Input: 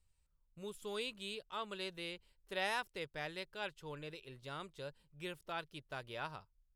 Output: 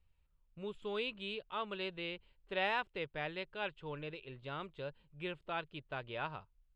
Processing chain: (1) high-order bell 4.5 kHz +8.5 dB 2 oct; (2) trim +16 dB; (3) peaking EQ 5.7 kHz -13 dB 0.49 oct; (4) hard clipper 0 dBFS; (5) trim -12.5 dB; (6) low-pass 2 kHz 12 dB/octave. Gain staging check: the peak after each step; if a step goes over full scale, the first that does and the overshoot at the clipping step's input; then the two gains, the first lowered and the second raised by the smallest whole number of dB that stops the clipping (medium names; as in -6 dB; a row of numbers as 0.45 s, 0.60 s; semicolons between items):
-18.0 dBFS, -2.0 dBFS, -4.0 dBFS, -4.0 dBFS, -16.5 dBFS, -22.0 dBFS; nothing clips